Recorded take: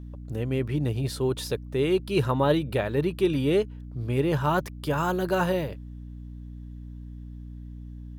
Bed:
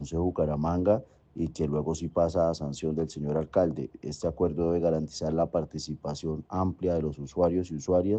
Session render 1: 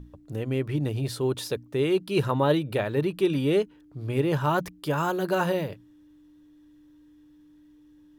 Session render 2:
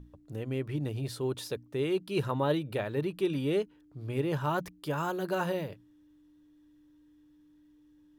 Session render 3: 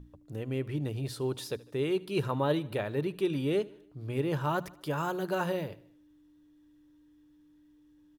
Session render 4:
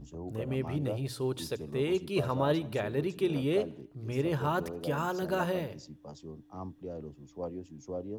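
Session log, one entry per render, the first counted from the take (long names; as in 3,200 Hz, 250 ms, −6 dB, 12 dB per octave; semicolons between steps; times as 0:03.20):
mains-hum notches 60/120/180/240 Hz
level −6 dB
repeating echo 76 ms, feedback 54%, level −21.5 dB
mix in bed −13.5 dB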